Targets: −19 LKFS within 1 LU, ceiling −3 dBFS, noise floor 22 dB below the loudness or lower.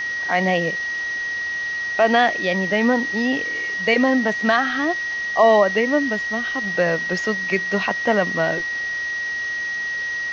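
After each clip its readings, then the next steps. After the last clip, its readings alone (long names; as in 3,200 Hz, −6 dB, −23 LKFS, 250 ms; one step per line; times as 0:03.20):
interfering tone 1,900 Hz; level of the tone −23 dBFS; background noise floor −26 dBFS; target noise floor −42 dBFS; integrated loudness −20.0 LKFS; sample peak −3.5 dBFS; target loudness −19.0 LKFS
→ notch filter 1,900 Hz, Q 30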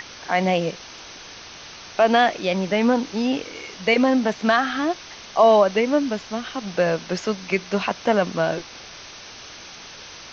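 interfering tone none found; background noise floor −41 dBFS; target noise floor −44 dBFS
→ noise reduction from a noise print 6 dB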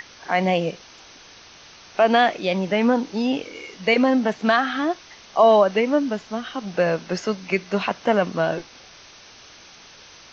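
background noise floor −47 dBFS; integrated loudness −21.5 LKFS; sample peak −4.5 dBFS; target loudness −19.0 LKFS
→ level +2.5 dB
brickwall limiter −3 dBFS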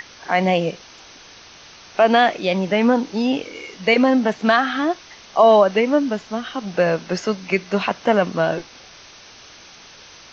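integrated loudness −19.0 LKFS; sample peak −3.0 dBFS; background noise floor −44 dBFS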